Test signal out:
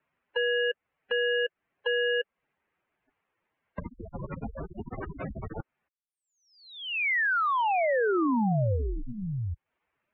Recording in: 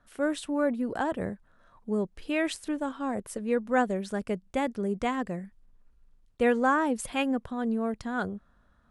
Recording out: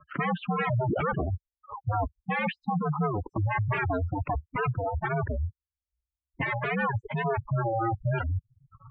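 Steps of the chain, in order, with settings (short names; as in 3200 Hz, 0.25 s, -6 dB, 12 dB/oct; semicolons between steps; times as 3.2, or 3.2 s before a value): rattling part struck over -35 dBFS, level -22 dBFS; sine folder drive 19 dB, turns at -12.5 dBFS; compressor 3:1, threshold -27 dBFS; spectral gate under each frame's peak -10 dB strong; mistuned SSB -110 Hz 160–2600 Hz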